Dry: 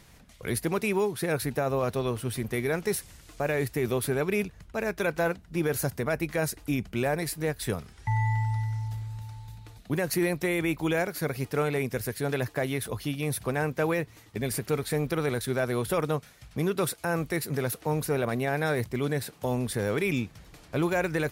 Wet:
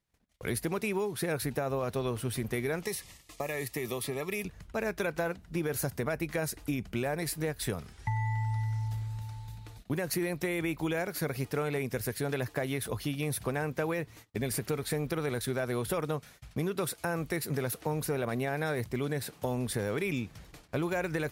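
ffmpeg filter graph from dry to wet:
-filter_complex "[0:a]asettb=1/sr,asplit=3[s0][s1][s2];[s0]atrim=end=2.834[s3];[s1]atrim=start=2.83:end=4.45,asetpts=PTS-STARTPTS,afade=t=in:d=0.004:c=qsin,afade=t=out:st=1.616:d=0.004:c=qsin,tiltshelf=f=800:g=-3.5,acrossover=split=100|5700[s4][s5][s6];[s4]acompressor=threshold=0.00141:ratio=4[s7];[s5]acompressor=threshold=0.0282:ratio=4[s8];[s6]acompressor=threshold=0.0112:ratio=4[s9];[s7][s8][s9]amix=inputs=3:normalize=0,asuperstop=centerf=1500:order=20:qfactor=5[s10];[s2]atrim=start=4.446[s11];[s3][s10]acrossfade=d=0.004:c1=hsin:c2=qsin[s12];[s12][s11]acrossfade=d=0.004:c1=qsin:c2=hsin,agate=range=0.0316:threshold=0.00316:ratio=16:detection=peak,acompressor=threshold=0.0398:ratio=6"

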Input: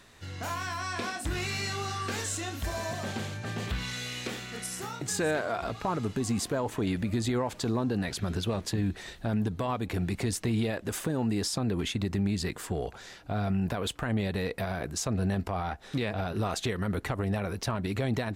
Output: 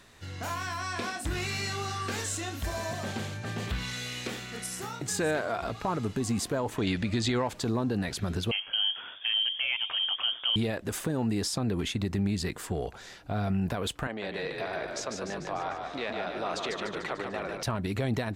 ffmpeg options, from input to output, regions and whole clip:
-filter_complex "[0:a]asettb=1/sr,asplit=3[s0][s1][s2];[s0]atrim=end=6.784[s3];[s1]atrim=start=6.78:end=7.48,asetpts=PTS-STARTPTS,afade=t=in:d=0.004:c=qsin,afade=t=out:st=0.696:d=0.004:c=qsin,lowpass=4800,highshelf=f=2200:g=11.5[s4];[s2]atrim=start=7.476[s5];[s3][s4]acrossfade=d=0.004:c1=hsin:c2=qsin[s6];[s6][s5]acrossfade=d=0.004:c1=qsin:c2=hsin,asettb=1/sr,asplit=3[s7][s8][s9];[s7]atrim=end=8.514[s10];[s8]atrim=start=8.51:end=10.56,asetpts=PTS-STARTPTS,afade=t=in:d=0.004:c=qsin,afade=t=out:st=2.046:d=0.004:c=qsin,lowpass=f=2800:t=q:w=0.5098,lowpass=f=2800:t=q:w=0.6013,lowpass=f=2800:t=q:w=0.9,lowpass=f=2800:t=q:w=2.563,afreqshift=-3300,asplit=7[s11][s12][s13][s14][s15][s16][s17];[s12]adelay=97,afreqshift=86,volume=0.141[s18];[s13]adelay=194,afreqshift=172,volume=0.0891[s19];[s14]adelay=291,afreqshift=258,volume=0.0562[s20];[s15]adelay=388,afreqshift=344,volume=0.0355[s21];[s16]adelay=485,afreqshift=430,volume=0.0221[s22];[s17]adelay=582,afreqshift=516,volume=0.014[s23];[s11][s18][s19][s20][s21][s22][s23]amix=inputs=7:normalize=0,atrim=end_sample=90405[s24];[s9]atrim=start=10.556[s25];[s10][s24]acrossfade=d=0.004:c1=hsin:c2=qsin[s26];[s26][s25]acrossfade=d=0.004:c1=qsin:c2=hsin,asettb=1/sr,asplit=3[s27][s28][s29];[s27]atrim=end=14.074[s30];[s28]atrim=start=14.07:end=17.63,asetpts=PTS-STARTPTS,afade=t=in:d=0.004:c=qsin,afade=t=out:st=3.556:d=0.004:c=qsin,highpass=400,lowpass=5200,asplit=9[s31][s32][s33][s34][s35][s36][s37][s38][s39];[s32]adelay=148,afreqshift=-34,volume=0.596[s40];[s33]adelay=296,afreqshift=-68,volume=0.347[s41];[s34]adelay=444,afreqshift=-102,volume=0.2[s42];[s35]adelay=592,afreqshift=-136,volume=0.116[s43];[s36]adelay=740,afreqshift=-170,volume=0.0676[s44];[s37]adelay=888,afreqshift=-204,volume=0.0389[s45];[s38]adelay=1036,afreqshift=-238,volume=0.0226[s46];[s39]adelay=1184,afreqshift=-272,volume=0.0132[s47];[s31][s40][s41][s42][s43][s44][s45][s46][s47]amix=inputs=9:normalize=0,atrim=end_sample=156996[s48];[s29]atrim=start=17.626[s49];[s30][s48]acrossfade=d=0.004:c1=hsin:c2=qsin[s50];[s50][s49]acrossfade=d=0.004:c1=qsin:c2=hsin"

